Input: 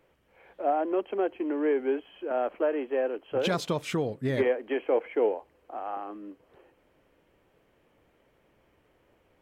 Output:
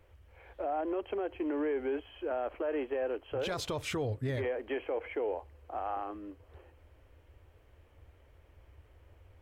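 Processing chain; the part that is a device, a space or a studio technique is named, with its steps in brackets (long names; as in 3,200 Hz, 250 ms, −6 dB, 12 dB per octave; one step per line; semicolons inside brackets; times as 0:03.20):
car stereo with a boomy subwoofer (low shelf with overshoot 120 Hz +12.5 dB, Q 3; brickwall limiter −26 dBFS, peak gain reduction 11 dB)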